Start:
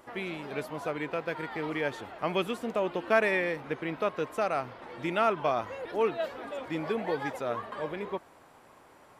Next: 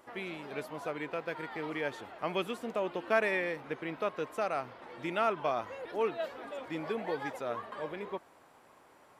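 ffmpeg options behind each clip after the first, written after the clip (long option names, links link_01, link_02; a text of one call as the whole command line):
ffmpeg -i in.wav -af "lowshelf=frequency=130:gain=-6.5,volume=-3.5dB" out.wav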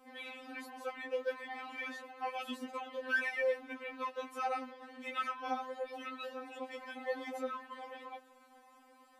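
ffmpeg -i in.wav -af "afftfilt=real='re*3.46*eq(mod(b,12),0)':imag='im*3.46*eq(mod(b,12),0)':win_size=2048:overlap=0.75" out.wav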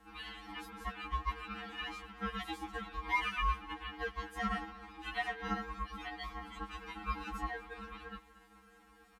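ffmpeg -i in.wav -af "aeval=exprs='val(0)*sin(2*PI*570*n/s)':channel_layout=same,aecho=1:1:233:0.112,volume=3dB" out.wav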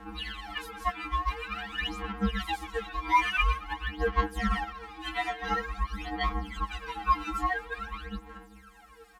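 ffmpeg -i in.wav -af "aphaser=in_gain=1:out_gain=1:delay=3:decay=0.75:speed=0.48:type=sinusoidal,volume=4.5dB" out.wav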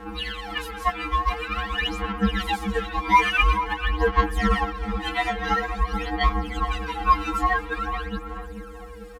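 ffmpeg -i in.wav -filter_complex "[0:a]asplit=2[link_01][link_02];[link_02]adelay=440,lowpass=frequency=830:poles=1,volume=-6dB,asplit=2[link_03][link_04];[link_04]adelay=440,lowpass=frequency=830:poles=1,volume=0.5,asplit=2[link_05][link_06];[link_06]adelay=440,lowpass=frequency=830:poles=1,volume=0.5,asplit=2[link_07][link_08];[link_08]adelay=440,lowpass=frequency=830:poles=1,volume=0.5,asplit=2[link_09][link_10];[link_10]adelay=440,lowpass=frequency=830:poles=1,volume=0.5,asplit=2[link_11][link_12];[link_12]adelay=440,lowpass=frequency=830:poles=1,volume=0.5[link_13];[link_01][link_03][link_05][link_07][link_09][link_11][link_13]amix=inputs=7:normalize=0,aeval=exprs='val(0)+0.00355*sin(2*PI*480*n/s)':channel_layout=same,volume=6.5dB" out.wav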